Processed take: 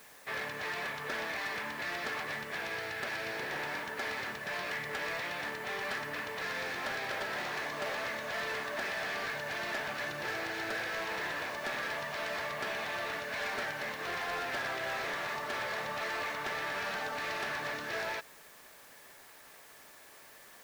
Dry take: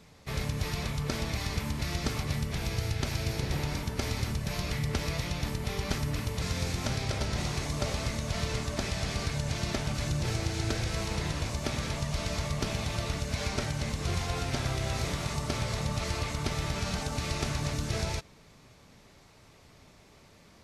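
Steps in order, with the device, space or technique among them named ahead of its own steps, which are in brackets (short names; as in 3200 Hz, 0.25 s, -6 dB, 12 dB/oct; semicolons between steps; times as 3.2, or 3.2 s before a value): drive-through speaker (BPF 520–2800 Hz; bell 1700 Hz +11.5 dB 0.21 oct; hard clip -34 dBFS, distortion -13 dB; white noise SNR 20 dB); gain +2.5 dB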